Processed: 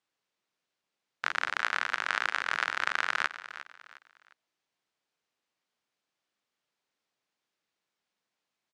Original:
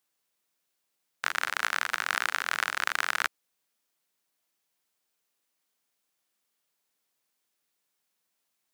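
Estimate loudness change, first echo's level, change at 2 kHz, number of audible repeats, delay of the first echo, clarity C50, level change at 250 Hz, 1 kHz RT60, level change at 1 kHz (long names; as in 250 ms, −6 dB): −1.0 dB, −14.0 dB, −0.5 dB, 3, 355 ms, no reverb audible, 0.0 dB, no reverb audible, −0.5 dB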